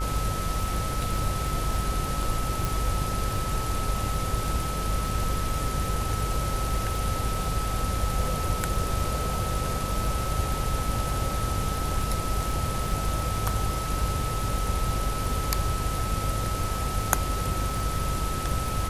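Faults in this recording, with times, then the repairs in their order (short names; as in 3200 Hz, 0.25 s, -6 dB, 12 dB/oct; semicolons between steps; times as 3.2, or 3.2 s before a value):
buzz 50 Hz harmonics 35 -32 dBFS
crackle 26/s -32 dBFS
tone 1300 Hz -33 dBFS
2.65 pop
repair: de-click; notch 1300 Hz, Q 30; de-hum 50 Hz, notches 35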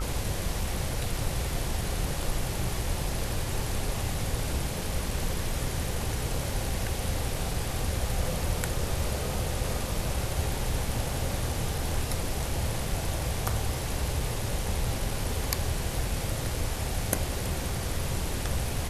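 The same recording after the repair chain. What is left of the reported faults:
none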